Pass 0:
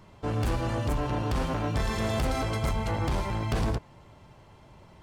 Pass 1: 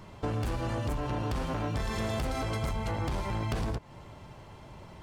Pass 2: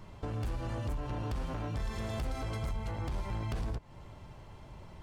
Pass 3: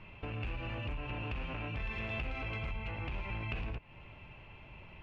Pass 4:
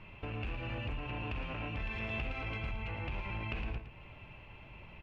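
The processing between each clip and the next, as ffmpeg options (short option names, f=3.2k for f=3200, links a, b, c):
-af "acompressor=threshold=-34dB:ratio=6,volume=4.5dB"
-af "lowshelf=f=65:g=11,alimiter=limit=-23.5dB:level=0:latency=1:release=352,volume=-4.5dB"
-af "lowpass=f=2.6k:t=q:w=10,volume=-4dB"
-af "aecho=1:1:113:0.335"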